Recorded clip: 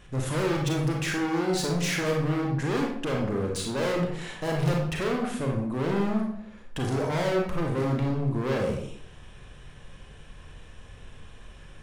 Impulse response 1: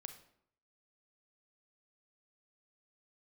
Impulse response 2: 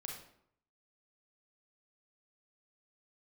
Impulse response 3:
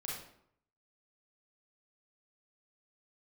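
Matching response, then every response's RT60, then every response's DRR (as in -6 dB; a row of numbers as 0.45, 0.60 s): 2; 0.70, 0.70, 0.70 s; 7.5, -0.5, -5.0 dB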